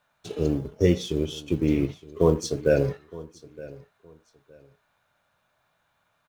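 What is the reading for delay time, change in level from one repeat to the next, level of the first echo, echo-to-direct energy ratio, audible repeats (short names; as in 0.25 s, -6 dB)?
0.916 s, -12.5 dB, -19.5 dB, -19.5 dB, 2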